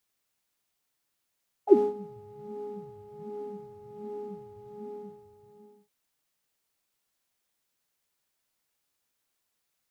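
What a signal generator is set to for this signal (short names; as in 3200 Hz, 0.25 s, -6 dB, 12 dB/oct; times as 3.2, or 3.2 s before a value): synth patch with filter wobble G#4, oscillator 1 triangle, oscillator 2 sine, interval +12 st, oscillator 2 level -4 dB, sub -27 dB, noise -7 dB, filter bandpass, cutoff 140 Hz, Q 11, filter envelope 2.5 oct, filter decay 0.08 s, filter sustain 10%, attack 99 ms, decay 0.16 s, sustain -15.5 dB, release 1.24 s, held 2.98 s, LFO 1.3 Hz, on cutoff 0.7 oct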